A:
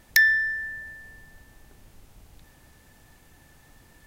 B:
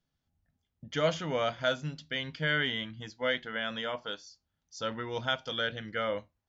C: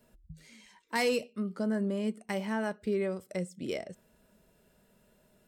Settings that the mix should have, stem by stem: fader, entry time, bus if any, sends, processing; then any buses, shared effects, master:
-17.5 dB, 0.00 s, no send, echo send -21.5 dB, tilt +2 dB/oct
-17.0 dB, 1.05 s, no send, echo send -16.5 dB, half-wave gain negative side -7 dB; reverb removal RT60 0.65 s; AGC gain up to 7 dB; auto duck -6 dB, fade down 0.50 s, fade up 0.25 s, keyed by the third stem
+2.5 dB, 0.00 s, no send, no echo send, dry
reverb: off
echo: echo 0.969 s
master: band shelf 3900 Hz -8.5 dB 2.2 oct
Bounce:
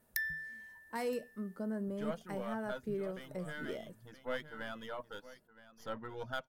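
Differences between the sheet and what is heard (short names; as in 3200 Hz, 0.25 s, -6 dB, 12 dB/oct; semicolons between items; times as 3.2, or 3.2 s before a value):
stem B -17.0 dB -> -11.0 dB; stem C +2.5 dB -> -7.5 dB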